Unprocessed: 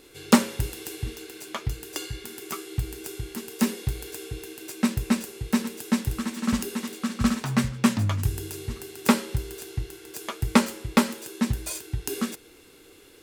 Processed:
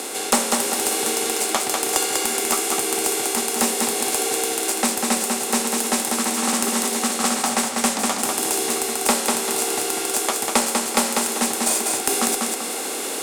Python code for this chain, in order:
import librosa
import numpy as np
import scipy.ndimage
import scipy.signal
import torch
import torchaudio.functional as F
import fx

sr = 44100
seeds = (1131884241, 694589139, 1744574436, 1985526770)

p1 = fx.bin_compress(x, sr, power=0.6)
p2 = fx.echo_feedback(p1, sr, ms=195, feedback_pct=28, wet_db=-4.5)
p3 = fx.rider(p2, sr, range_db=4, speed_s=0.5)
p4 = p2 + (p3 * 10.0 ** (0.0 / 20.0))
p5 = scipy.signal.sosfilt(scipy.signal.butter(4, 270.0, 'highpass', fs=sr, output='sos'), p4)
p6 = fx.peak_eq(p5, sr, hz=8900.0, db=11.5, octaves=1.3)
p7 = fx.tube_stage(p6, sr, drive_db=-1.0, bias=0.25)
p8 = fx.peak_eq(p7, sr, hz=740.0, db=13.5, octaves=0.32)
p9 = fx.band_squash(p8, sr, depth_pct=40)
y = p9 * 10.0 ** (-5.0 / 20.0)